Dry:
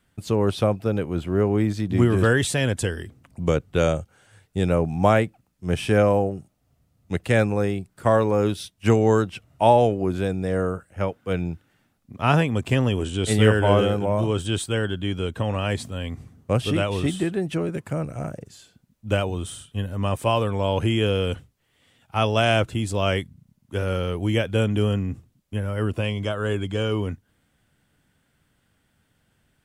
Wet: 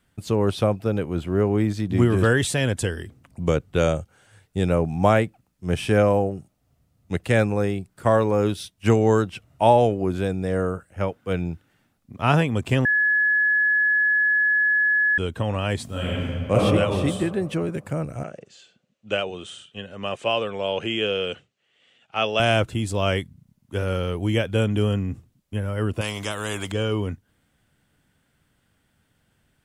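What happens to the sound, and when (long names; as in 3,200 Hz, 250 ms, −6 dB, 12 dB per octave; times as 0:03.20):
0:12.85–0:15.18: beep over 1,700 Hz −16.5 dBFS
0:15.85–0:16.55: thrown reverb, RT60 2.2 s, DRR −7 dB
0:18.23–0:22.40: loudspeaker in its box 260–6,800 Hz, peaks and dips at 280 Hz −8 dB, 960 Hz −7 dB, 2,800 Hz +6 dB, 5,200 Hz −4 dB
0:26.01–0:26.72: every bin compressed towards the loudest bin 2 to 1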